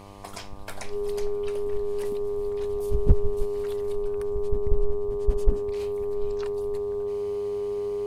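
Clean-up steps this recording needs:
clipped peaks rebuilt −7.5 dBFS
hum removal 99.4 Hz, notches 12
notch filter 410 Hz, Q 30

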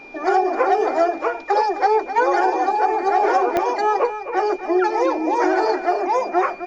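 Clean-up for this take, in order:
click removal
notch filter 2,400 Hz, Q 30
downward expander −22 dBFS, range −21 dB
echo removal 260 ms −11 dB

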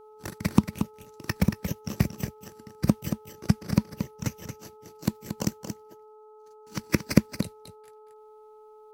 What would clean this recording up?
hum removal 429.8 Hz, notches 3
echo removal 229 ms −8.5 dB

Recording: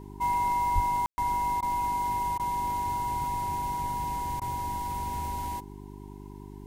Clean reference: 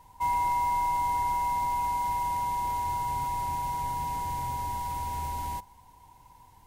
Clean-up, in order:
hum removal 50 Hz, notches 8
0:00.74–0:00.86: high-pass filter 140 Hz 24 dB per octave
ambience match 0:01.06–0:01.18
repair the gap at 0:01.61/0:02.38/0:04.40, 14 ms

